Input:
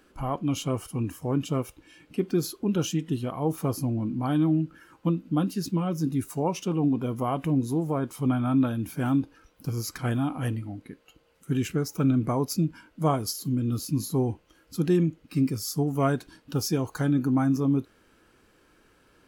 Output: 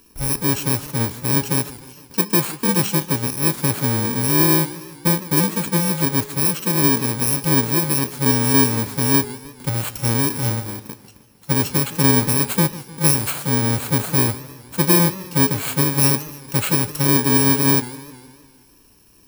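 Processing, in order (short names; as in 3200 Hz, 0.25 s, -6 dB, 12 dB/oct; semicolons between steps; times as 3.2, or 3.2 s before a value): FFT order left unsorted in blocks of 64 samples; de-hum 208.4 Hz, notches 36; warbling echo 0.154 s, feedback 57%, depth 188 cents, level -17 dB; gain +7.5 dB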